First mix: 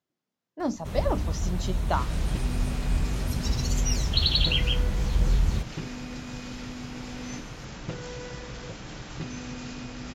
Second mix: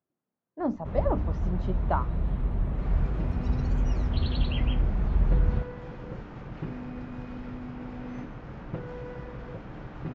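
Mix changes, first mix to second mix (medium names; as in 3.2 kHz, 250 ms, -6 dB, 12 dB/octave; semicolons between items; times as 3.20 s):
second sound: entry +0.85 s; master: add low-pass 1.4 kHz 12 dB/octave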